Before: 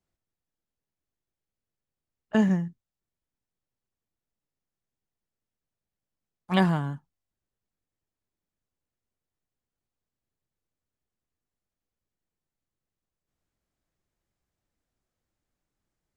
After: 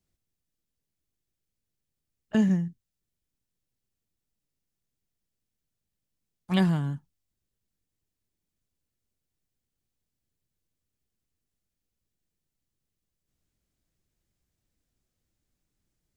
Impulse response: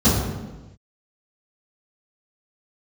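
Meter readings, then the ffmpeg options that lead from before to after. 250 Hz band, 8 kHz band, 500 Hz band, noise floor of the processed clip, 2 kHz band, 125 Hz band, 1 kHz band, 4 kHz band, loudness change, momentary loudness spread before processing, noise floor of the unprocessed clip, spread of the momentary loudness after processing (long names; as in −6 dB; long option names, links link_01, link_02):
0.0 dB, can't be measured, −4.0 dB, −85 dBFS, −4.5 dB, +0.5 dB, −7.5 dB, −1.0 dB, −1.0 dB, 13 LU, below −85 dBFS, 12 LU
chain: -filter_complex "[0:a]equalizer=frequency=950:width_type=o:width=2.4:gain=-9.5,asplit=2[link_01][link_02];[link_02]acompressor=threshold=-37dB:ratio=6,volume=-1dB[link_03];[link_01][link_03]amix=inputs=2:normalize=0"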